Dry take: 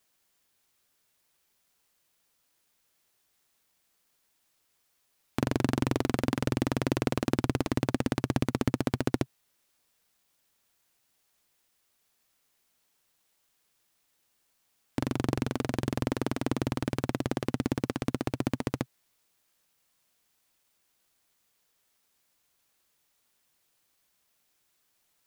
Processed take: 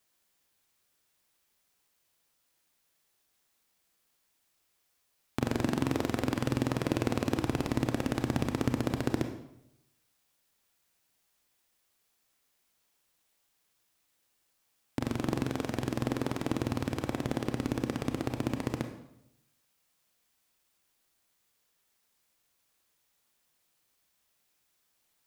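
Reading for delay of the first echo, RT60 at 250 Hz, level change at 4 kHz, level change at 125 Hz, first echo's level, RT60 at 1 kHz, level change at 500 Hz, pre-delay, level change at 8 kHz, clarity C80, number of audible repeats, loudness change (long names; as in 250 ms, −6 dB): no echo audible, 0.90 s, −1.5 dB, −2.0 dB, no echo audible, 0.75 s, −1.5 dB, 27 ms, −1.5 dB, 11.0 dB, no echo audible, −1.5 dB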